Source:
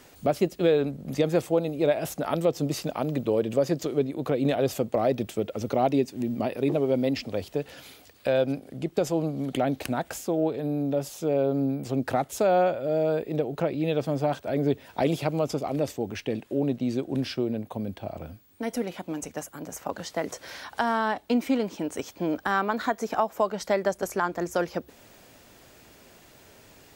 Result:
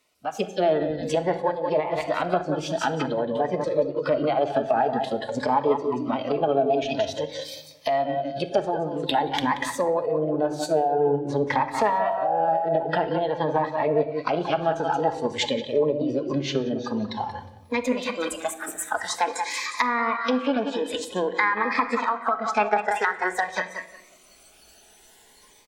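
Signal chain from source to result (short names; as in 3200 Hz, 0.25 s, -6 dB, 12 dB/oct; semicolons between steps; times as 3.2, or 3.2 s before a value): AGC gain up to 12 dB; feedback echo 0.189 s, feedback 44%, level -8.5 dB; spectral noise reduction 15 dB; treble ducked by the level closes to 1400 Hz, closed at -13 dBFS; tone controls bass -12 dB, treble -10 dB; compressor 3:1, threshold -18 dBFS, peak gain reduction 7.5 dB; formant shift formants +3 st; high shelf 3100 Hz +9 dB; wide varispeed 1.05×; on a send at -8.5 dB: reverb RT60 0.90 s, pre-delay 5 ms; on the sum: cascading phaser rising 0.5 Hz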